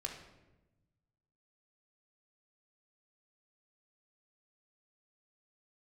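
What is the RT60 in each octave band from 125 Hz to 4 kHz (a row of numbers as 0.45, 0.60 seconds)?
1.9, 1.5, 1.2, 0.90, 0.85, 0.70 seconds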